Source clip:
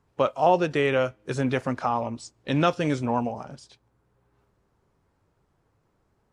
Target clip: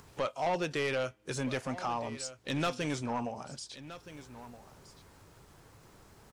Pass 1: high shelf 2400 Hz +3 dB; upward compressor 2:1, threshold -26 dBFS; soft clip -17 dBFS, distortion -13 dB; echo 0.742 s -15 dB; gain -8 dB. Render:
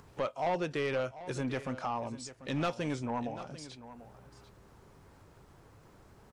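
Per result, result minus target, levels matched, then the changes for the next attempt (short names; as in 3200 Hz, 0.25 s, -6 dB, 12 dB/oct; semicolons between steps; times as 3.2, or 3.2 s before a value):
echo 0.529 s early; 4000 Hz band -4.0 dB
change: echo 1.271 s -15 dB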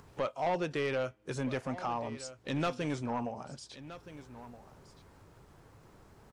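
4000 Hz band -4.0 dB
change: high shelf 2400 Hz +11.5 dB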